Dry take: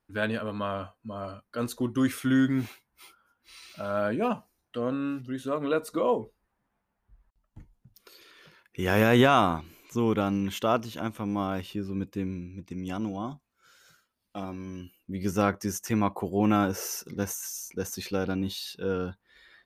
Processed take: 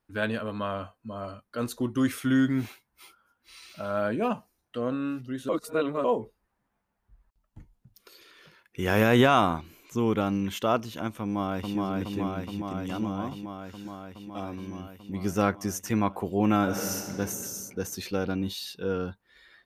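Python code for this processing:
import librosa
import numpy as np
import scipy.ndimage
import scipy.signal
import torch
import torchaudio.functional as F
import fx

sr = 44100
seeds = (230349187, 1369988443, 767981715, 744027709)

y = fx.echo_throw(x, sr, start_s=11.21, length_s=0.56, ms=420, feedback_pct=80, wet_db=-2.0)
y = fx.reverb_throw(y, sr, start_s=16.62, length_s=0.57, rt60_s=2.2, drr_db=1.0)
y = fx.edit(y, sr, fx.reverse_span(start_s=5.49, length_s=0.55), tone=tone)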